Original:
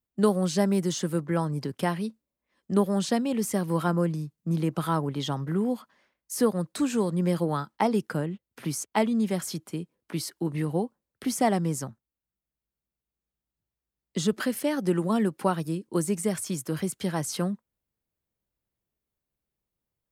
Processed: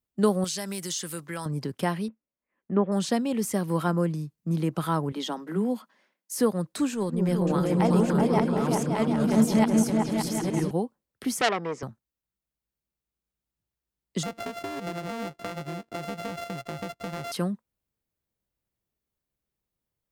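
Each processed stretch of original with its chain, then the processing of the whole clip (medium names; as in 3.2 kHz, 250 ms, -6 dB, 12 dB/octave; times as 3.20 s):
0.44–1.46 s: tilt shelf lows -9.5 dB, about 1.4 kHz + compression 3:1, threshold -29 dBFS
2.08–2.92 s: gate -53 dBFS, range -6 dB + steep low-pass 2.6 kHz + peaking EQ 75 Hz -12.5 dB 0.84 oct
5.12–6.39 s: steep high-pass 170 Hz 96 dB/octave + band-stop 1.2 kHz, Q 23
6.90–10.71 s: chunks repeated in reverse 601 ms, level 0 dB + transient shaper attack -10 dB, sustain -6 dB + delay with an opening low-pass 190 ms, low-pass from 400 Hz, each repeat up 2 oct, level 0 dB
11.41–11.83 s: cabinet simulation 290–5000 Hz, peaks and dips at 460 Hz +10 dB, 710 Hz +5 dB, 1.2 kHz +4 dB, 2.2 kHz +8 dB, 4.3 kHz -7 dB + transformer saturation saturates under 2.9 kHz
14.23–17.32 s: sorted samples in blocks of 64 samples + treble shelf 5.2 kHz -10 dB + compression, threshold -30 dBFS
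whole clip: none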